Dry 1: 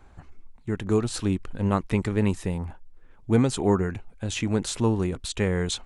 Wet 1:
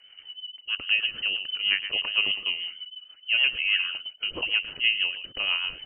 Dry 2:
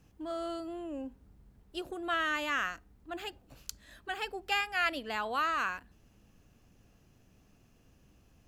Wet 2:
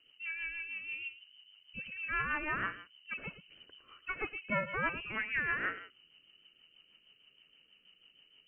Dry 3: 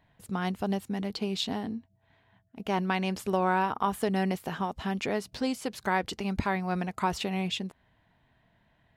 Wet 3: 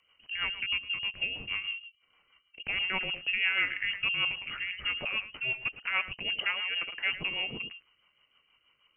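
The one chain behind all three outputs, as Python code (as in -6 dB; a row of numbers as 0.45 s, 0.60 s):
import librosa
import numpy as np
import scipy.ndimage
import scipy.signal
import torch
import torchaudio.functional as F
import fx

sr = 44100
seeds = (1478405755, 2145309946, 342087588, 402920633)

y = x + 10.0 ** (-12.0 / 20.0) * np.pad(x, (int(109 * sr / 1000.0), 0))[:len(x)]
y = fx.freq_invert(y, sr, carrier_hz=3000)
y = fx.rotary(y, sr, hz=6.3)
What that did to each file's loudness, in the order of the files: +1.5 LU, -2.0 LU, 0.0 LU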